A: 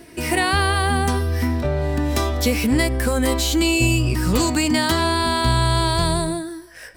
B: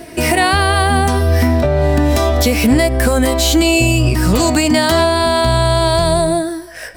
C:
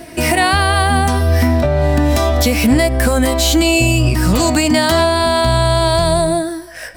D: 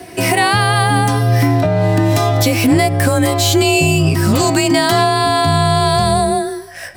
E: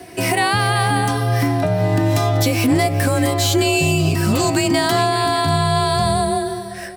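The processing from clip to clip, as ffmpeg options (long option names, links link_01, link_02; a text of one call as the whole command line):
ffmpeg -i in.wav -af "equalizer=frequency=660:width=5.8:gain=9,alimiter=limit=-12.5dB:level=0:latency=1:release=236,volume=9dB" out.wav
ffmpeg -i in.wav -af "equalizer=frequency=420:width=5.4:gain=-7" out.wav
ffmpeg -i in.wav -af "afreqshift=34" out.wav
ffmpeg -i in.wav -af "aecho=1:1:382|589:0.178|0.141,volume=-4dB" out.wav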